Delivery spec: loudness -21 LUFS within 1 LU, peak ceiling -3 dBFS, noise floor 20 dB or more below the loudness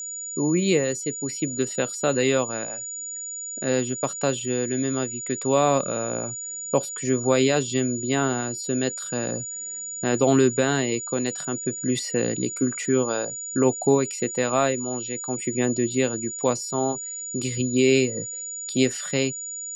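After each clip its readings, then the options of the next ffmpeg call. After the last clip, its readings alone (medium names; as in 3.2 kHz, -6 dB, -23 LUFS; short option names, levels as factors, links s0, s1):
steady tone 6.9 kHz; tone level -31 dBFS; loudness -24.5 LUFS; peak level -7.5 dBFS; loudness target -21.0 LUFS
-> -af "bandreject=f=6900:w=30"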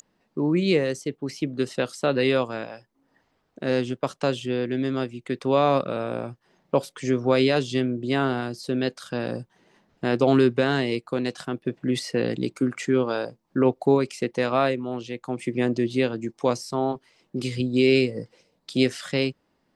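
steady tone not found; loudness -25.0 LUFS; peak level -8.0 dBFS; loudness target -21.0 LUFS
-> -af "volume=1.58"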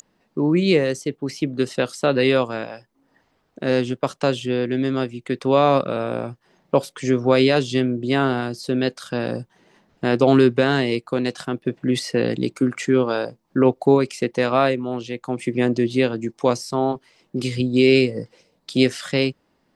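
loudness -21.0 LUFS; peak level -4.0 dBFS; noise floor -67 dBFS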